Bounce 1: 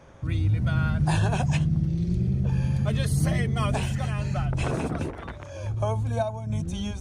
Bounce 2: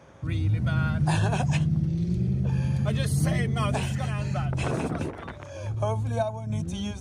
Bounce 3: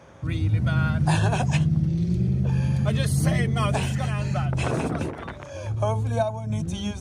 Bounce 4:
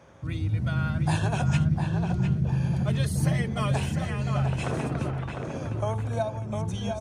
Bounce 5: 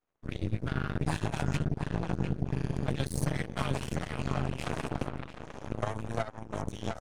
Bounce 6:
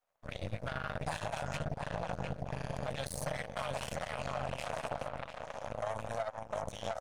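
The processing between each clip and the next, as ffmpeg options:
-af "highpass=80"
-af "bandreject=f=49.07:t=h:w=4,bandreject=f=98.14:t=h:w=4,bandreject=f=147.21:t=h:w=4,bandreject=f=196.28:t=h:w=4,bandreject=f=245.35:t=h:w=4,bandreject=f=294.42:t=h:w=4,bandreject=f=343.49:t=h:w=4,bandreject=f=392.56:t=h:w=4,bandreject=f=441.63:t=h:w=4,volume=3dB"
-filter_complex "[0:a]asplit=2[a][b];[b]adelay=704,lowpass=f=2.4k:p=1,volume=-4.5dB,asplit=2[c][d];[d]adelay=704,lowpass=f=2.4k:p=1,volume=0.38,asplit=2[e][f];[f]adelay=704,lowpass=f=2.4k:p=1,volume=0.38,asplit=2[g][h];[h]adelay=704,lowpass=f=2.4k:p=1,volume=0.38,asplit=2[i][j];[j]adelay=704,lowpass=f=2.4k:p=1,volume=0.38[k];[a][c][e][g][i][k]amix=inputs=6:normalize=0,volume=-4.5dB"
-af "aeval=exprs='0.266*(cos(1*acos(clip(val(0)/0.266,-1,1)))-cos(1*PI/2))+0.0596*(cos(4*acos(clip(val(0)/0.266,-1,1)))-cos(4*PI/2))+0.0211*(cos(5*acos(clip(val(0)/0.266,-1,1)))-cos(5*PI/2))+0.0531*(cos(7*acos(clip(val(0)/0.266,-1,1)))-cos(7*PI/2))':c=same,acompressor=threshold=-26dB:ratio=4"
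-af "lowshelf=f=460:t=q:w=3:g=-8,alimiter=level_in=1.5dB:limit=-24dB:level=0:latency=1:release=57,volume=-1.5dB,volume=1dB"

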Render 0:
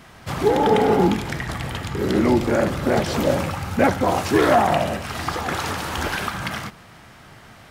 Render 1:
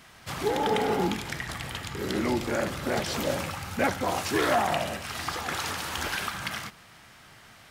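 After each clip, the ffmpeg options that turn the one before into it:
-af "tiltshelf=f=1.3k:g=-4.5,volume=-6dB"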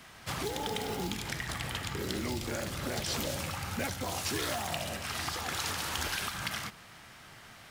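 -filter_complex "[0:a]acrusher=bits=7:mode=log:mix=0:aa=0.000001,acrossover=split=130|3000[a][b][c];[b]acompressor=threshold=-35dB:ratio=6[d];[a][d][c]amix=inputs=3:normalize=0"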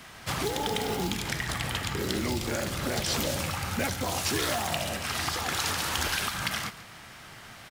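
-af "aecho=1:1:139:0.141,volume=5dB"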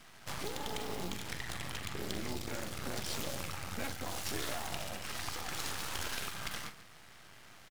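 -filter_complex "[0:a]aeval=exprs='max(val(0),0)':c=same,asplit=2[a][b];[b]adelay=44,volume=-12dB[c];[a][c]amix=inputs=2:normalize=0,volume=-6dB"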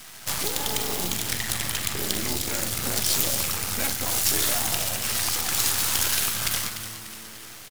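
-filter_complex "[0:a]crystalizer=i=3:c=0,asplit=6[a][b][c][d][e][f];[b]adelay=295,afreqshift=-110,volume=-11dB[g];[c]adelay=590,afreqshift=-220,volume=-17dB[h];[d]adelay=885,afreqshift=-330,volume=-23dB[i];[e]adelay=1180,afreqshift=-440,volume=-29.1dB[j];[f]adelay=1475,afreqshift=-550,volume=-35.1dB[k];[a][g][h][i][j][k]amix=inputs=6:normalize=0,volume=7.5dB"

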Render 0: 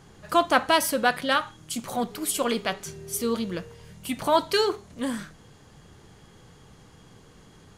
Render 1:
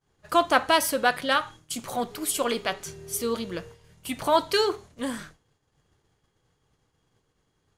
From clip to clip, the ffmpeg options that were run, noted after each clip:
-af "agate=range=-33dB:threshold=-39dB:ratio=3:detection=peak,equalizer=f=200:w=2.5:g=-6.5"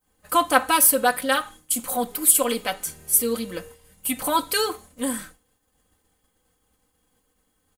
-af "aecho=1:1:3.9:0.83,aexciter=amount=3.7:drive=7.9:freq=8.1k,volume=-1dB"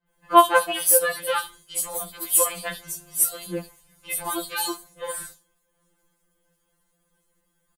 -filter_complex "[0:a]acrossover=split=3800[a][b];[b]adelay=70[c];[a][c]amix=inputs=2:normalize=0,afftfilt=real='re*2.83*eq(mod(b,8),0)':imag='im*2.83*eq(mod(b,8),0)':win_size=2048:overlap=0.75,volume=1dB"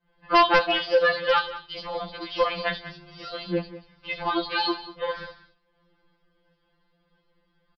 -af "aresample=11025,asoftclip=type=hard:threshold=-17.5dB,aresample=44100,aecho=1:1:191:0.168,volume=4dB"

